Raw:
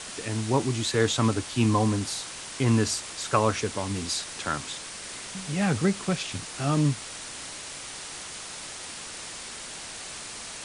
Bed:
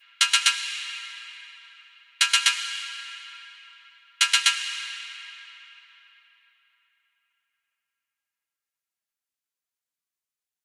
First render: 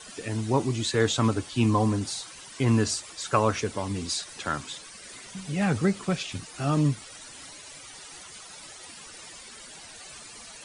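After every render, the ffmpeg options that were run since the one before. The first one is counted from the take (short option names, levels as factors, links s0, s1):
-af "afftdn=nr=13:nf=-40"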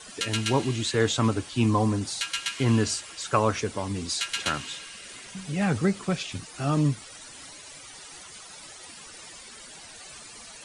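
-filter_complex "[1:a]volume=0.299[s0];[0:a][s0]amix=inputs=2:normalize=0"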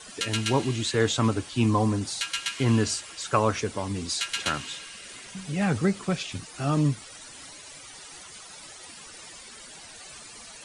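-af anull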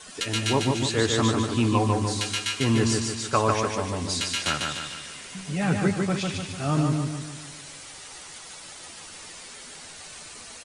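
-filter_complex "[0:a]asplit=2[s0][s1];[s1]adelay=12,volume=0.282[s2];[s0][s2]amix=inputs=2:normalize=0,aecho=1:1:148|296|444|592|740|888:0.668|0.321|0.154|0.0739|0.0355|0.017"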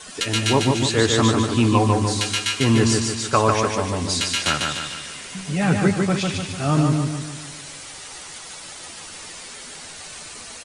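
-af "volume=1.78,alimiter=limit=0.708:level=0:latency=1"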